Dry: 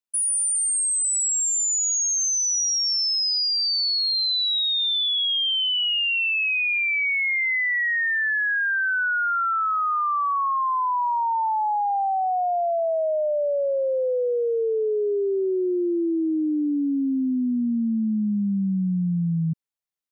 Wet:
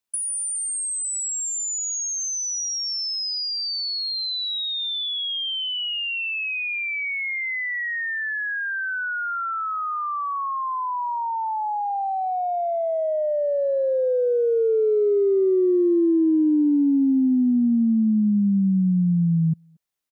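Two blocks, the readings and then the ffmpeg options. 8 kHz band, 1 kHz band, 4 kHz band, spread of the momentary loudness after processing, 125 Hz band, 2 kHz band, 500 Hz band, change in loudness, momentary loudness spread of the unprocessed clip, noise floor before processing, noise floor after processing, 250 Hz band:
-4.0 dB, -3.0 dB, -4.0 dB, 7 LU, no reading, -4.0 dB, +2.5 dB, -1.0 dB, 4 LU, -23 dBFS, -27 dBFS, +4.5 dB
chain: -filter_complex "[0:a]acrossover=split=100|430[s0][s1][s2];[s0]acompressor=threshold=0.00316:ratio=4[s3];[s1]acompressor=threshold=0.0562:ratio=4[s4];[s2]acompressor=threshold=0.0178:ratio=4[s5];[s3][s4][s5]amix=inputs=3:normalize=0,asplit=2[s6][s7];[s7]adelay=230,highpass=300,lowpass=3400,asoftclip=type=hard:threshold=0.0316,volume=0.0794[s8];[s6][s8]amix=inputs=2:normalize=0,volume=2.11"

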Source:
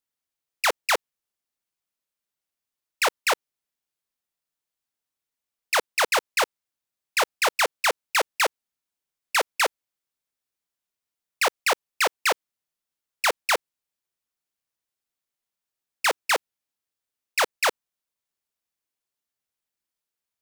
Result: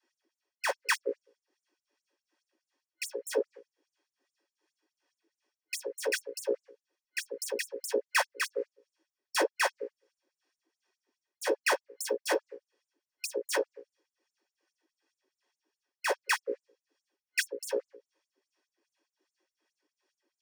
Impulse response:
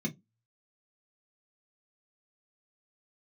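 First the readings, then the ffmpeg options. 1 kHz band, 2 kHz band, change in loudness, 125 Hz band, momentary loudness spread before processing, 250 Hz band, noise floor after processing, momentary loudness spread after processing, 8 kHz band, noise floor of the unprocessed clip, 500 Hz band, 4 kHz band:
-11.5 dB, -8.5 dB, -8.5 dB, no reading, 4 LU, +1.5 dB, under -85 dBFS, 11 LU, -8.0 dB, under -85 dBFS, -3.0 dB, -10.5 dB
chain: -filter_complex "[0:a]bandreject=f=60:t=h:w=6,bandreject=f=120:t=h:w=6,bandreject=f=180:t=h:w=6,bandreject=f=240:t=h:w=6,bandreject=f=300:t=h:w=6,bandreject=f=360:t=h:w=6,bandreject=f=420:t=h:w=6,bandreject=f=480:t=h:w=6,bandreject=f=540:t=h:w=6[s0];[1:a]atrim=start_sample=2205,asetrate=66150,aresample=44100[s1];[s0][s1]afir=irnorm=-1:irlink=0,apsyclip=10.6,acrossover=split=6500[s2][s3];[s3]acrusher=bits=5:mix=0:aa=0.000001[s4];[s2][s4]amix=inputs=2:normalize=0,superequalizer=11b=1.78:13b=0.447,areverse,acompressor=threshold=0.1:ratio=6,areverse,acrossover=split=570[s5][s6];[s5]aeval=exprs='val(0)*(1-0.5/2+0.5/2*cos(2*PI*2.6*n/s))':c=same[s7];[s6]aeval=exprs='val(0)*(1-0.5/2-0.5/2*cos(2*PI*2.6*n/s))':c=same[s8];[s7][s8]amix=inputs=2:normalize=0,afftfilt=real='re*gte(b*sr/1024,250*pow(6900/250,0.5+0.5*sin(2*PI*4.8*pts/sr)))':imag='im*gte(b*sr/1024,250*pow(6900/250,0.5+0.5*sin(2*PI*4.8*pts/sr)))':win_size=1024:overlap=0.75,volume=0.668"

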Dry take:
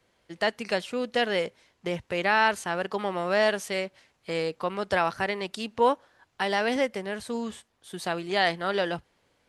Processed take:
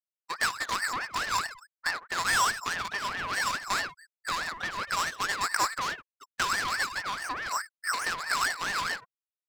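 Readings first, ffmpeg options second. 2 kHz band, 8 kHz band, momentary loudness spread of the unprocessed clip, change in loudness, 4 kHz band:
+1.0 dB, +10.5 dB, 11 LU, -2.0 dB, +0.5 dB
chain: -filter_complex "[0:a]aresample=11025,aeval=exprs='0.376*sin(PI/2*3.55*val(0)/0.376)':c=same,aresample=44100,acrusher=bits=6:mix=0:aa=0.000001,asplit=2[s0][s1];[s1]aecho=0:1:74|148|222:0.211|0.055|0.0143[s2];[s0][s2]amix=inputs=2:normalize=0,flanger=delay=15.5:depth=2.5:speed=1.2,acompressor=threshold=0.0447:ratio=6,aeval=exprs='val(0)+0.00224*(sin(2*PI*60*n/s)+sin(2*PI*2*60*n/s)/2+sin(2*PI*3*60*n/s)/3+sin(2*PI*4*60*n/s)/4+sin(2*PI*5*60*n/s)/5)':c=same,lowpass=f=3300:t=q:w=10,afftfilt=real='re*gte(hypot(re,im),0.0562)':imag='im*gte(hypot(re,im),0.0562)':win_size=1024:overlap=0.75,lowshelf=f=75:g=-9.5,aeval=exprs='abs(val(0))':c=same,aeval=exprs='val(0)*sin(2*PI*1400*n/s+1400*0.3/4.7*sin(2*PI*4.7*n/s))':c=same,volume=0.841"

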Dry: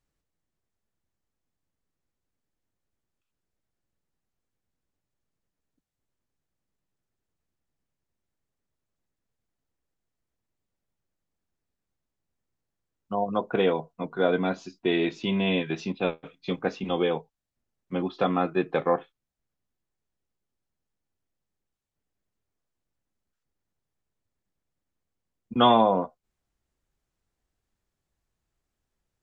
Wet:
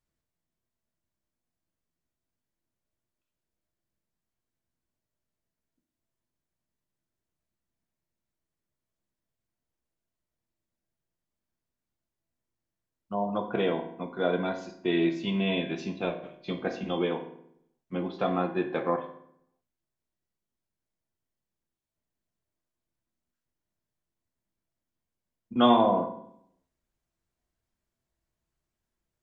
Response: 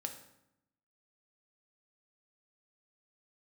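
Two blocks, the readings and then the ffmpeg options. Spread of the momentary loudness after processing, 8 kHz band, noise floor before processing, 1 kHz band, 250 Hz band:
14 LU, no reading, -85 dBFS, -3.0 dB, -1.0 dB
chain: -filter_complex "[1:a]atrim=start_sample=2205,asetrate=52920,aresample=44100[s0];[0:a][s0]afir=irnorm=-1:irlink=0"

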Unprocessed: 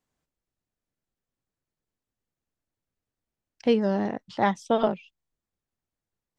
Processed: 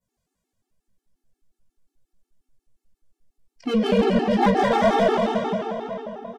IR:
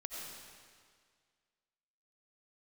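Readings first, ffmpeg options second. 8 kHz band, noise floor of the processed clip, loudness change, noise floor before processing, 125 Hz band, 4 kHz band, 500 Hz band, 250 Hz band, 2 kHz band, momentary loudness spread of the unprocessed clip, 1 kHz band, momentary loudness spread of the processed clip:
no reading, -85 dBFS, +5.0 dB, under -85 dBFS, +7.5 dB, +8.5 dB, +6.5 dB, +6.5 dB, +8.0 dB, 7 LU, +7.5 dB, 13 LU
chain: -filter_complex "[0:a]asplit=2[s0][s1];[s1]adelay=760,lowpass=f=3700:p=1,volume=0.126,asplit=2[s2][s3];[s3]adelay=760,lowpass=f=3700:p=1,volume=0.39,asplit=2[s4][s5];[s5]adelay=760,lowpass=f=3700:p=1,volume=0.39[s6];[s0][s2][s4][s6]amix=inputs=4:normalize=0[s7];[1:a]atrim=start_sample=2205,asetrate=26019,aresample=44100[s8];[s7][s8]afir=irnorm=-1:irlink=0,acrossover=split=510|2400[s9][s10][s11];[s11]alimiter=level_in=5.01:limit=0.0631:level=0:latency=1:release=426,volume=0.2[s12];[s9][s10][s12]amix=inputs=3:normalize=0,adynamicequalizer=threshold=0.00398:dfrequency=3800:dqfactor=0.8:tfrequency=3800:tqfactor=0.8:attack=5:release=100:ratio=0.375:range=3:mode=boostabove:tftype=bell,flanger=delay=15.5:depth=7.9:speed=2,highshelf=f=5100:g=8,asplit=2[s13][s14];[s14]adynamicsmooth=sensitivity=7.5:basefreq=1100,volume=1[s15];[s13][s15]amix=inputs=2:normalize=0,asoftclip=type=tanh:threshold=0.168,afftfilt=real='re*gt(sin(2*PI*5.6*pts/sr)*(1-2*mod(floor(b*sr/1024/230),2)),0)':imag='im*gt(sin(2*PI*5.6*pts/sr)*(1-2*mod(floor(b*sr/1024/230),2)),0)':win_size=1024:overlap=0.75,volume=2.11"

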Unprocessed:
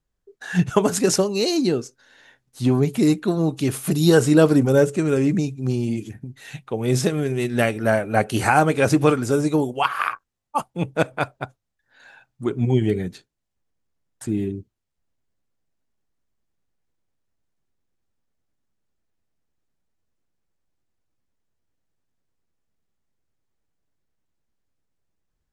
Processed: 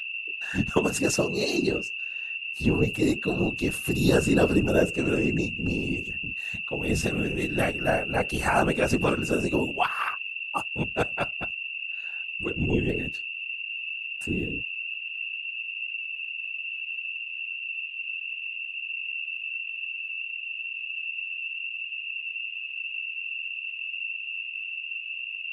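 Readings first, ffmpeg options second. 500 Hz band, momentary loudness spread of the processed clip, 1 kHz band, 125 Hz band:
-6.0 dB, 8 LU, -6.0 dB, -7.5 dB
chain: -af "aeval=exprs='val(0)+0.0562*sin(2*PI*2700*n/s)':c=same,afftfilt=real='hypot(re,im)*cos(2*PI*random(0))':imag='hypot(re,im)*sin(2*PI*random(1))':win_size=512:overlap=0.75"

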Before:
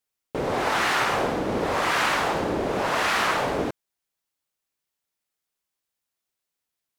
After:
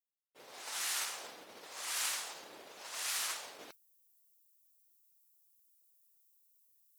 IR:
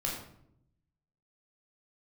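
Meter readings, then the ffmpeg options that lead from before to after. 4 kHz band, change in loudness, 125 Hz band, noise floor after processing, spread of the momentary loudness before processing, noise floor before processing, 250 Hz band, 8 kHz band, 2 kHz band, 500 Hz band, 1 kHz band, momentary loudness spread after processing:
-10.0 dB, -14.0 dB, under -35 dB, -71 dBFS, 7 LU, -85 dBFS, -33.5 dB, -1.0 dB, -18.5 dB, -28.5 dB, -23.5 dB, 17 LU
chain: -filter_complex "[0:a]highpass=54,afftdn=nr=14:nf=-47,agate=range=0.0224:threshold=0.158:ratio=3:detection=peak,aderivative,areverse,acompressor=mode=upward:threshold=0.00398:ratio=2.5,areverse,crystalizer=i=3:c=0,acrossover=split=920[s0][s1];[s0]acontrast=51[s2];[s2][s1]amix=inputs=2:normalize=0,volume=0.708"

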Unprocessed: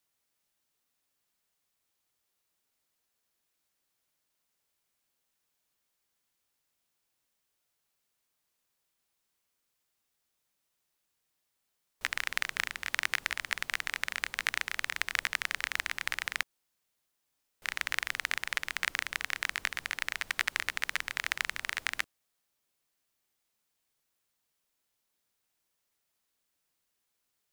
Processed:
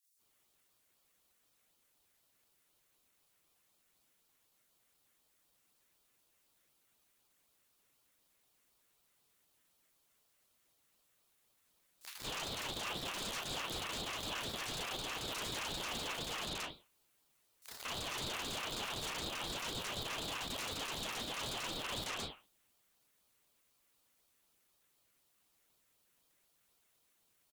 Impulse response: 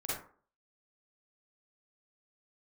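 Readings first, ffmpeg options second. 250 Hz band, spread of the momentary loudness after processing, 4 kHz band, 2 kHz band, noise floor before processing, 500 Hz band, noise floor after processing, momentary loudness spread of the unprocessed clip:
+10.0 dB, 4 LU, -1.5 dB, -13.0 dB, -81 dBFS, +7.0 dB, -76 dBFS, 3 LU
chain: -filter_complex "[0:a]aeval=exprs='clip(val(0),-1,0.0891)':c=same,acrossover=split=4100[s0][s1];[s0]adelay=170[s2];[s2][s1]amix=inputs=2:normalize=0[s3];[1:a]atrim=start_sample=2205,asetrate=74970,aresample=44100[s4];[s3][s4]afir=irnorm=-1:irlink=0,aeval=exprs='0.015*(abs(mod(val(0)/0.015+3,4)-2)-1)':c=same,highpass=440,equalizer=f=870:t=o:w=0.4:g=-9,bandreject=f=4000:w=7.1,alimiter=level_in=8.41:limit=0.0631:level=0:latency=1:release=171,volume=0.119,asplit=2[s5][s6];[s6]adelay=37,volume=0.335[s7];[s5][s7]amix=inputs=2:normalize=0,aeval=exprs='val(0)*sin(2*PI*1300*n/s+1300*0.45/4*sin(2*PI*4*n/s))':c=same,volume=3.98"

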